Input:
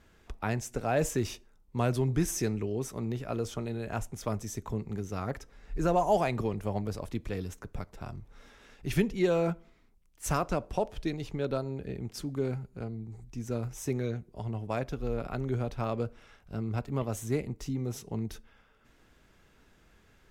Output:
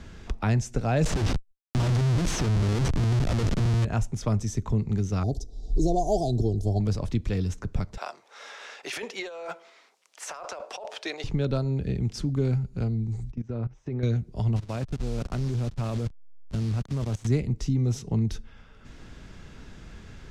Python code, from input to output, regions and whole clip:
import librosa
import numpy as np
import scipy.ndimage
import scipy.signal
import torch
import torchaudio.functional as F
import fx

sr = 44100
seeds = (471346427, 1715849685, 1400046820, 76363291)

y = fx.chain(x, sr, fx.schmitt(flips_db=-37.5),
    fx.pre_swell(db_per_s=130.0), at=(1.04, 3.85))
y = fx.chain(y, sr, fx.cheby2_bandstop(low_hz=1200.0, high_hz=2400.0, order=4, stop_db=50),
    fx.comb(ms=2.8, depth=0.52), at=(5.23, 6.8))
y = fx.chain(y, sr, fx.highpass(hz=550.0, slope=24),
    fx.over_compress(threshold_db=-41.0, ratio=-1.0), at=(7.97, 11.24))
y = fx.chain(y, sr, fx.low_shelf(hz=240.0, db=-7.0),
    fx.level_steps(step_db=20),
    fx.lowpass(hz=1400.0, slope=12), at=(13.31, 14.03))
y = fx.chain(y, sr, fx.delta_hold(step_db=-38.0),
    fx.level_steps(step_db=19), at=(14.56, 17.27))
y = scipy.signal.sosfilt(scipy.signal.butter(2, 5300.0, 'lowpass', fs=sr, output='sos'), y)
y = fx.bass_treble(y, sr, bass_db=10, treble_db=9)
y = fx.band_squash(y, sr, depth_pct=40)
y = y * librosa.db_to_amplitude(1.5)